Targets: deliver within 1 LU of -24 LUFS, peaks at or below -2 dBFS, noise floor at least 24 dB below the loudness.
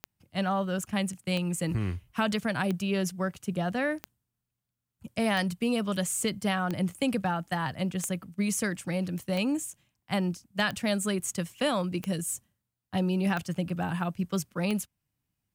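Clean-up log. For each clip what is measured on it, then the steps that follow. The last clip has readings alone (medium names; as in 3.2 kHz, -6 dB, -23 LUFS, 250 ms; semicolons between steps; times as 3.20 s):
clicks found 12; loudness -30.5 LUFS; peak level -14.5 dBFS; loudness target -24.0 LUFS
-> de-click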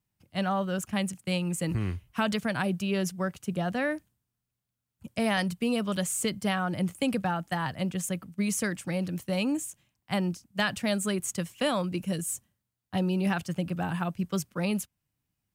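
clicks found 0; loudness -30.5 LUFS; peak level -15.0 dBFS; loudness target -24.0 LUFS
-> trim +6.5 dB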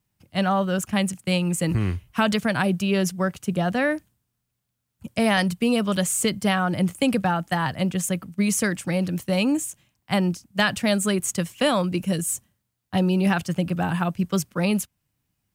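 loudness -24.0 LUFS; peak level -8.5 dBFS; noise floor -78 dBFS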